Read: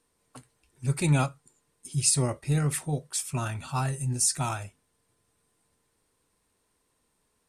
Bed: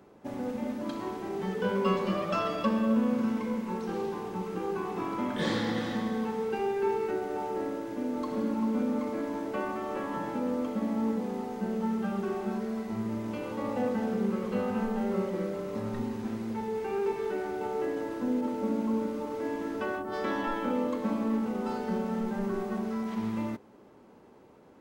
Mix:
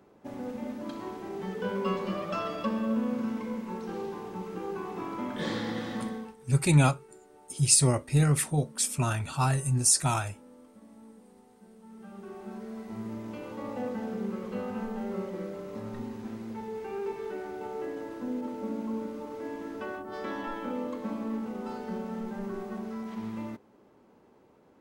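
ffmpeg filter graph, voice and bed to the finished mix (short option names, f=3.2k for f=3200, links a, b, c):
-filter_complex "[0:a]adelay=5650,volume=2.5dB[a];[1:a]volume=15dB,afade=t=out:st=6.06:d=0.3:silence=0.105925,afade=t=in:st=11.84:d=1.2:silence=0.125893[b];[a][b]amix=inputs=2:normalize=0"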